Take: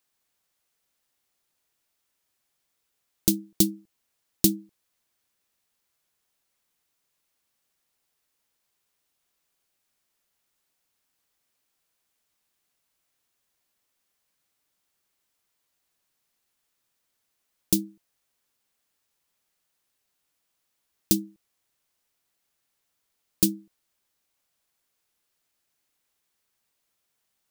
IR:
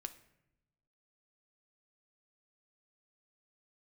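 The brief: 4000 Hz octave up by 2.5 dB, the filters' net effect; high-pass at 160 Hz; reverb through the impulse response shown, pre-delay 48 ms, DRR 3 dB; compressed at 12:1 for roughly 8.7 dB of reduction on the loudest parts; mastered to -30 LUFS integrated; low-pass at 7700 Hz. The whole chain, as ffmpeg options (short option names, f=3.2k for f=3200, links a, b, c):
-filter_complex "[0:a]highpass=160,lowpass=7.7k,equalizer=f=4k:t=o:g=3.5,acompressor=threshold=-27dB:ratio=12,asplit=2[a][b];[1:a]atrim=start_sample=2205,adelay=48[c];[b][c]afir=irnorm=-1:irlink=0,volume=0.5dB[d];[a][d]amix=inputs=2:normalize=0,volume=5.5dB"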